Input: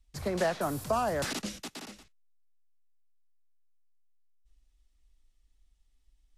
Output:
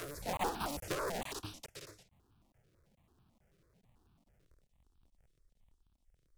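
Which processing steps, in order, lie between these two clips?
sub-harmonics by changed cycles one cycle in 2, inverted
on a send: backwards echo 620 ms −4.5 dB
on the sum: regular buffer underruns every 0.43 s, samples 1,024, zero, from 0:00.37
step-sequenced phaser 9.1 Hz 230–2,000 Hz
level −5 dB

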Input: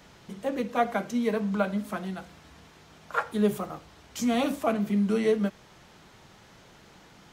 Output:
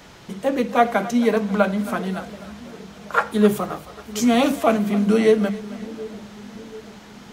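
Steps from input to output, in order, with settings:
mains-hum notches 50/100/150/200 Hz
on a send: echo with a time of its own for lows and highs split 500 Hz, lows 731 ms, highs 270 ms, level −16 dB
on the sum: level +8.5 dB

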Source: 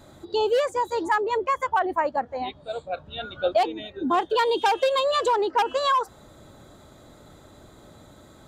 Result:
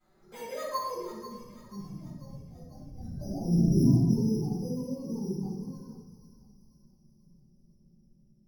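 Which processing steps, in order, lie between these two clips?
sub-octave generator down 1 octave, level +1 dB
source passing by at 0:03.70, 23 m/s, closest 2.3 metres
parametric band 1,200 Hz +3 dB 2 octaves
downward compressor 6 to 1, threshold −36 dBFS, peak gain reduction 13.5 dB
flanger swept by the level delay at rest 5.5 ms, full sweep at −39.5 dBFS
low-pass filter sweep 5,200 Hz → 210 Hz, 0:00.24–0:01.30
bad sample-rate conversion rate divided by 8×, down none, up hold
feedback echo with a high-pass in the loop 490 ms, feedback 55%, high-pass 1,100 Hz, level −11.5 dB
rectangular room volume 410 cubic metres, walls mixed, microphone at 7.2 metres

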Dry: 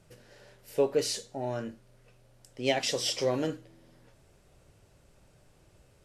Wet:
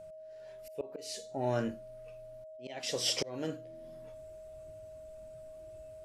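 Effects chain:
volume swells 641 ms
noise reduction from a noise print of the clip's start 7 dB
steady tone 630 Hz −50 dBFS
level +3.5 dB

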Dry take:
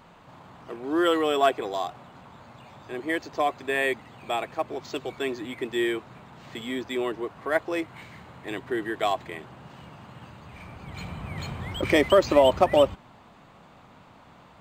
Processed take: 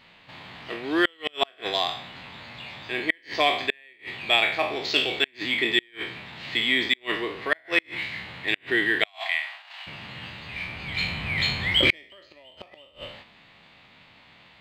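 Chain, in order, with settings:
peak hold with a decay on every bin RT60 0.54 s
0:09.05–0:09.87: Butterworth high-pass 630 Hz 96 dB per octave
noise gate −48 dBFS, range −8 dB
flat-topped bell 2,900 Hz +14.5 dB
gate with flip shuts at −7 dBFS, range −37 dB

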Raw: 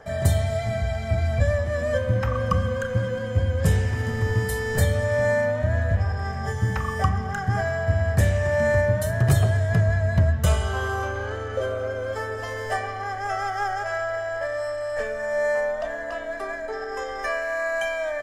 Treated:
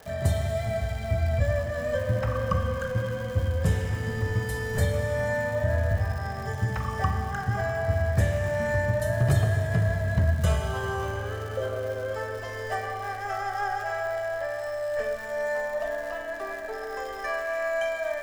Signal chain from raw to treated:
high-shelf EQ 6,100 Hz −5 dB
surface crackle 260 per second −33 dBFS
four-comb reverb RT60 2.8 s, DRR 6 dB
level −4 dB

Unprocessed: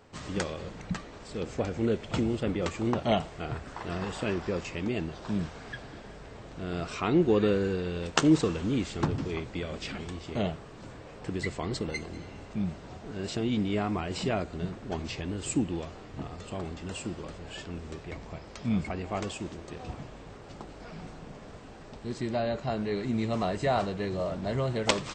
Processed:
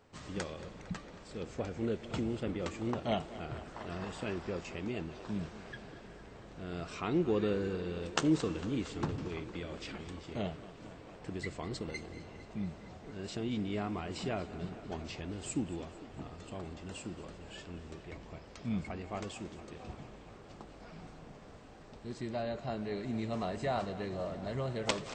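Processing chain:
tape delay 229 ms, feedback 86%, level −15.5 dB, low-pass 5,900 Hz
level −7 dB

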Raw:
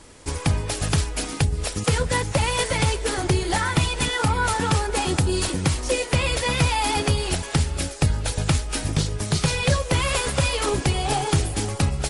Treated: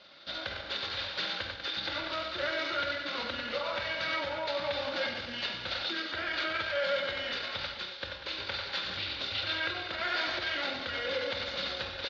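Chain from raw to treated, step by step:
elliptic low-pass filter 6,700 Hz, stop band 60 dB
low-shelf EQ 170 Hz +2.5 dB
feedback echo with a high-pass in the loop 95 ms, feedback 68%, high-pass 390 Hz, level −9 dB
sample-and-hold tremolo
high-pass filter 110 Hz 12 dB per octave
on a send at −3 dB: convolution reverb RT60 0.70 s, pre-delay 11 ms
on the sum: pitch shifter −7.5 semitones
brickwall limiter −19.5 dBFS, peak gain reduction 10 dB
spectral tilt +4 dB per octave
hollow resonant body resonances 560/1,400/3,600 Hz, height 10 dB, ringing for 25 ms
level −7.5 dB

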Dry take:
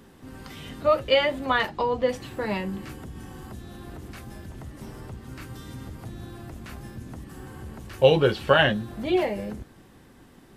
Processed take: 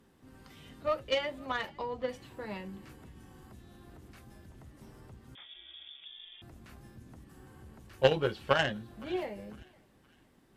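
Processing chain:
harmonic generator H 3 −13 dB, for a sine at −4 dBFS
on a send: feedback echo with a high-pass in the loop 511 ms, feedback 44%, high-pass 920 Hz, level −22.5 dB
0:05.35–0:06.42: on the sum: voice inversion scrambler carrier 3,500 Hz
level −3 dB

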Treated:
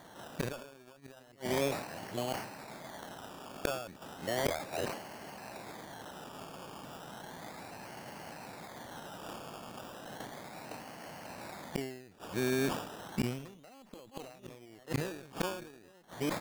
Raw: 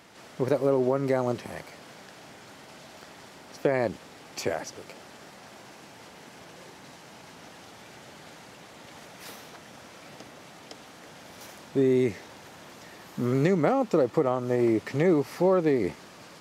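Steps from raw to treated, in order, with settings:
delay that plays each chunk backwards 582 ms, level −9 dB
high-shelf EQ 2,300 Hz −11 dB
comb filter 1.2 ms, depth 32%
harmonic generator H 4 −12 dB, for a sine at −10.5 dBFS
sample-and-hold swept by an LFO 17×, swing 60% 0.34 Hz
low-shelf EQ 160 Hz −7.5 dB
gate with flip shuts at −22 dBFS, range −32 dB
level that may fall only so fast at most 74 dB per second
level +3 dB

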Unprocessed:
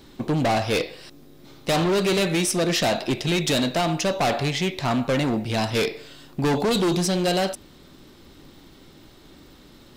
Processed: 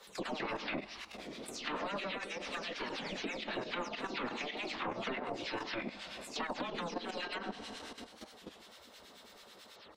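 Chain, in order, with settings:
every frequency bin delayed by itself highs early, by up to 209 ms
four-comb reverb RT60 3.7 s, combs from 30 ms, DRR 16.5 dB
gate on every frequency bin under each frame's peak −10 dB weak
low shelf with overshoot 170 Hz −6 dB, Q 3
output level in coarse steps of 10 dB
brickwall limiter −26 dBFS, peak gain reduction 8.5 dB
downward compressor 2.5 to 1, threshold −40 dBFS, peak gain reduction 6 dB
two-band tremolo in antiphase 9.2 Hz, depth 70%, crossover 1,200 Hz
treble cut that deepens with the level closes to 2,500 Hz, closed at −40.5 dBFS
wow of a warped record 33 1/3 rpm, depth 160 cents
level +7 dB

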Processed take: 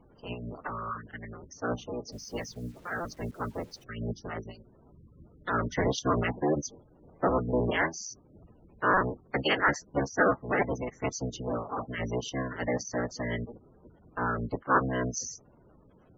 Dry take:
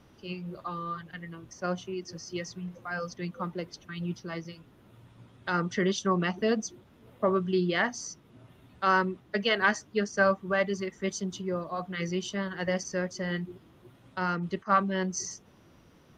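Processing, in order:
sub-harmonics by changed cycles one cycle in 3, inverted
gate on every frequency bin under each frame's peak −15 dB strong
0:02.12–0:03.84: bit-depth reduction 10 bits, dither none

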